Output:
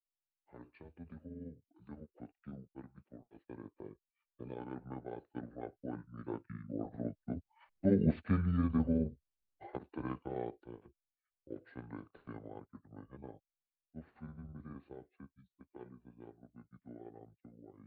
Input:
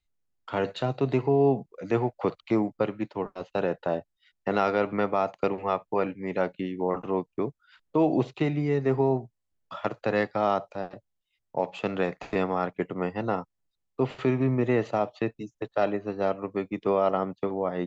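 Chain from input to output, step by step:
pitch shift by two crossfaded delay taps −8.5 semitones
source passing by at 0:08.21, 5 m/s, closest 3.2 metres
gain on a spectral selection 0:04.03–0:04.58, 640–2,200 Hz −8 dB
level −3.5 dB

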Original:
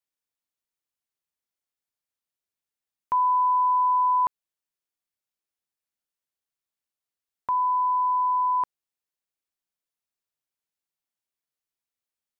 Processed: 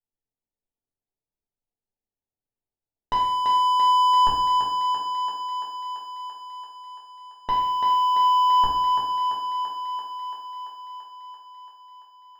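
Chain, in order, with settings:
Chebyshev low-pass filter 860 Hz, order 4
spectral tilt −3 dB per octave
mains-hum notches 60/120/180/240/300/360/420/480 Hz
leveller curve on the samples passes 3
feedback echo with a high-pass in the loop 338 ms, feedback 74%, high-pass 230 Hz, level −4 dB
convolution reverb RT60 0.80 s, pre-delay 4 ms, DRR −3 dB

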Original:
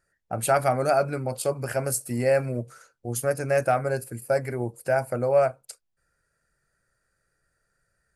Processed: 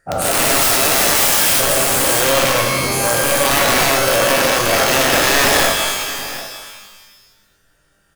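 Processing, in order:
every bin's largest magnitude spread in time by 480 ms
0:00.61–0:01.60: bass and treble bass −15 dB, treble +14 dB
in parallel at −1 dB: downward compressor 8 to 1, threshold −26 dBFS, peak gain reduction 19 dB
on the sum: wrap-around overflow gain 10 dB
on a send: single-tap delay 742 ms −15.5 dB
on the sum: reverb with rising layers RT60 1.2 s, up +12 semitones, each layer −2 dB, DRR 3 dB
level −1.5 dB

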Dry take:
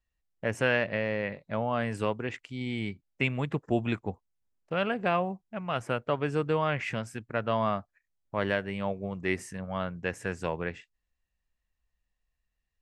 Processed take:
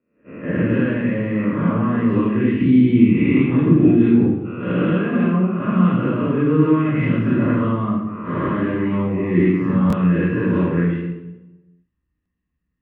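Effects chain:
peak hold with a rise ahead of every peak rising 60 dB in 0.79 s
automatic gain control gain up to 8.5 dB
noise gate −40 dBFS, range −16 dB
low-shelf EQ 91 Hz −9.5 dB
downward compressor 8 to 1, threshold −32 dBFS, peak gain reduction 18.5 dB
low-pass filter 2,700 Hz 24 dB per octave
parametric band 280 Hz +10 dB 1.1 octaves
convolution reverb RT60 1.1 s, pre-delay 151 ms, DRR −9 dB
buffer that repeats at 0:09.88/0:12.21, samples 1,024, times 1
level −9 dB

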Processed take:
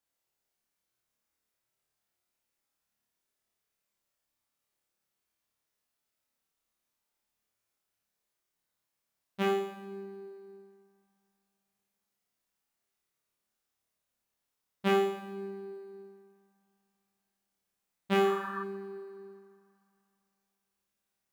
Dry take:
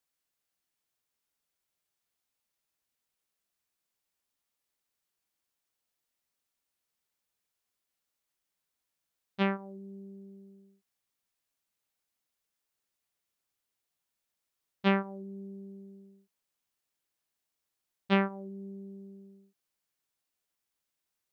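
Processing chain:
in parallel at −11.5 dB: decimation without filtering 10×
on the sum: flutter between parallel walls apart 4.8 metres, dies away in 0.79 s
healed spectral selection 0:18.27–0:18.60, 840–1,800 Hz before
convolution reverb RT60 2.8 s, pre-delay 5 ms, DRR 13 dB
level −4.5 dB

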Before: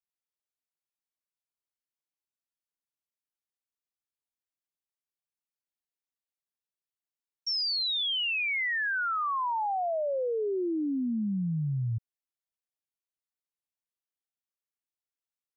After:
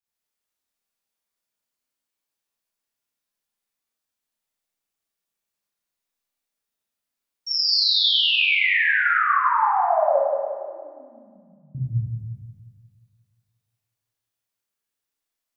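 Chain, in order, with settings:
0:10.16–0:11.75: gate with flip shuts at −35 dBFS, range −35 dB
echo with a time of its own for lows and highs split 2,100 Hz, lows 178 ms, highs 94 ms, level −5 dB
four-comb reverb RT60 1.1 s, combs from 27 ms, DRR −8 dB

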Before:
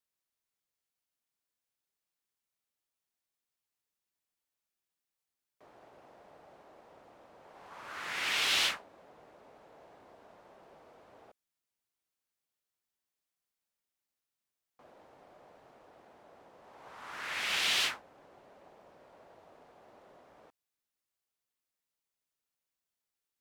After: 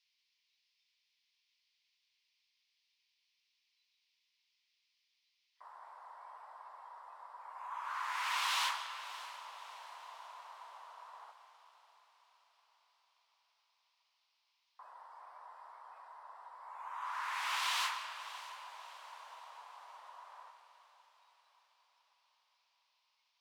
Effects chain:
four-pole ladder high-pass 930 Hz, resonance 75%
dynamic equaliser 2,600 Hz, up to −4 dB, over −50 dBFS, Q 0.74
in parallel at −0.5 dB: downward compressor, threshold −55 dBFS, peak gain reduction 16 dB
on the sum: noise in a band 2,100–5,400 Hz −75 dBFS
noise reduction from a noise print of the clip's start 12 dB
feedback delay with all-pass diffusion 620 ms, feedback 53%, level −15 dB
comb and all-pass reverb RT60 2.4 s, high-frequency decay 0.65×, pre-delay 75 ms, DRR 8.5 dB
level +5.5 dB

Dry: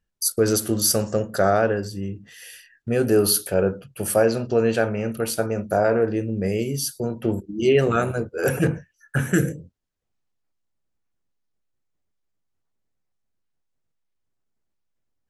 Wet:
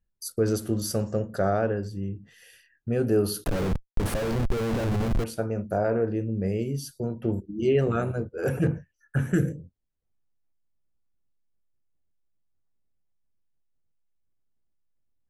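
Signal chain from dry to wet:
0:03.44–0:05.24: comparator with hysteresis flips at −29 dBFS
spectral tilt −2 dB per octave
level −7.5 dB

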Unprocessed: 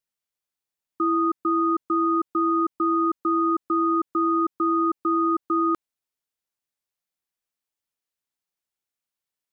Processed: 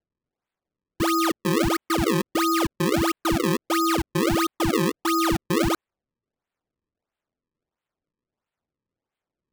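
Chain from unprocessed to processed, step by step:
sample-and-hold swept by an LFO 35×, swing 160% 1.5 Hz

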